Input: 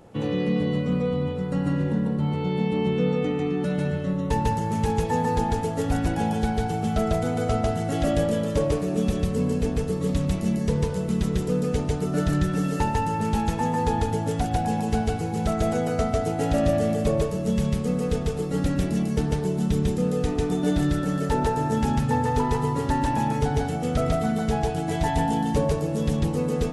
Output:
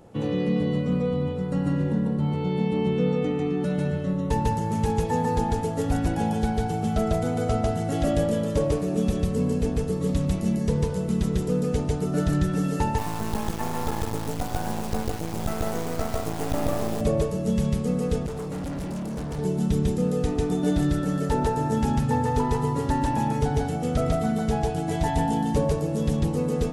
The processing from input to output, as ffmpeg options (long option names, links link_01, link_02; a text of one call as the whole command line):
ffmpeg -i in.wav -filter_complex "[0:a]asettb=1/sr,asplit=3[link_01][link_02][link_03];[link_01]atrim=end=12.984[link_04];[link_02]atrim=start=12.98:end=17.01,asetpts=PTS-STARTPTS,afade=type=in:duration=0.004:curve=qsin,afade=type=out:start_time=4.026:duration=0.004:curve=qsin,acrusher=bits=3:dc=4:mix=0:aa=0.000001[link_05];[link_03]atrim=start=17.006[link_06];[link_04][link_05]acrossfade=duration=0.004:curve1=hsin:curve2=qsin[link_07];[link_07][link_06]acrossfade=duration=0.004:curve1=qsin:curve2=hsin,asettb=1/sr,asplit=3[link_08][link_09][link_10];[link_08]atrim=end=18.264[link_11];[link_09]atrim=start=18.26:end=19.39,asetpts=PTS-STARTPTS,afade=type=in:duration=0.004:curve=qsin,afade=type=out:start_time=1.126:duration=0.004:curve=qsin,asoftclip=type=hard:threshold=-29dB[link_12];[link_10]atrim=start=19.386[link_13];[link_11][link_12]acrossfade=duration=0.004:curve1=hsin:curve2=qsin[link_14];[link_14][link_13]acrossfade=duration=0.004:curve1=qsin:curve2=hsin,equalizer=frequency=2200:width_type=o:width=2.3:gain=-3" out.wav